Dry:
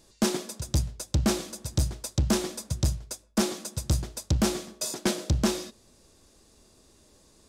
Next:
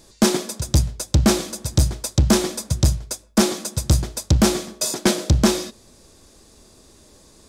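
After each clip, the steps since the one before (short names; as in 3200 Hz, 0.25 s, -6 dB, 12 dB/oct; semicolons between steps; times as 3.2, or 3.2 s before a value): notch 2800 Hz, Q 29; gain +8.5 dB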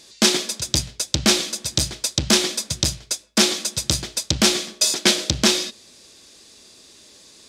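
weighting filter D; gain -2.5 dB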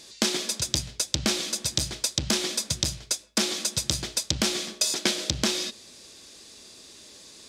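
compressor 5:1, threshold -22 dBFS, peak gain reduction 10.5 dB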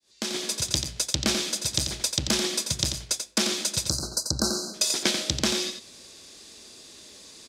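opening faded in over 0.53 s; spectral delete 3.88–4.74, 1600–3900 Hz; echo 88 ms -7 dB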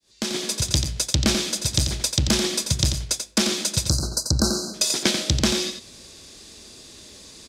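low shelf 150 Hz +11.5 dB; gain +2.5 dB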